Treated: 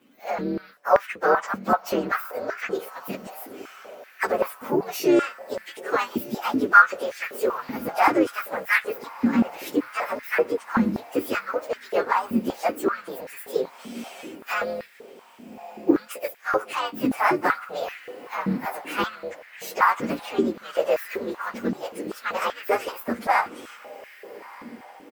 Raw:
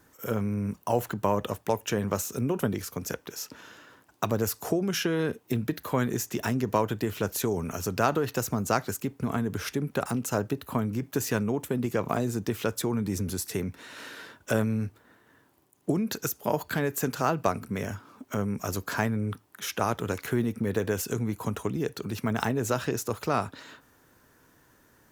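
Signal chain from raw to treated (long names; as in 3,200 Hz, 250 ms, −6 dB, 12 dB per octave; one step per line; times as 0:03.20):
partials spread apart or drawn together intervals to 128%
feedback delay with all-pass diffusion 1,233 ms, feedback 49%, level −16 dB
pitch-shifted copies added −4 semitones −10 dB, +3 semitones −15 dB
dynamic equaliser 1,300 Hz, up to +8 dB, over −50 dBFS, Q 2.3
high-pass on a step sequencer 5.2 Hz 240–1,800 Hz
level +3 dB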